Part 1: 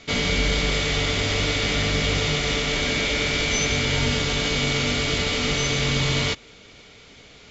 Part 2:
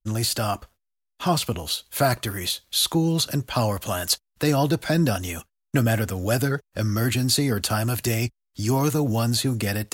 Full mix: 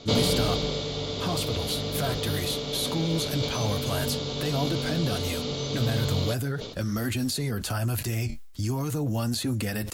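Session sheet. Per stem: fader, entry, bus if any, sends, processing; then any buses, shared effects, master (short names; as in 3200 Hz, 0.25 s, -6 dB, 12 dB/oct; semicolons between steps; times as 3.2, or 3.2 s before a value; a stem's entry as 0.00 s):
-6.5 dB, 0.00 s, no send, graphic EQ 125/250/500/1000/2000/4000 Hz +11/+6/+11/+7/-10/+12 dB; auto duck -10 dB, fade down 0.90 s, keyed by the second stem
+1.0 dB, 0.00 s, no send, flange 0.42 Hz, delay 3.2 ms, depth 7.8 ms, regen -49%; low shelf 75 Hz +10.5 dB; limiter -21.5 dBFS, peak gain reduction 10.5 dB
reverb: off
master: sustainer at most 70 dB/s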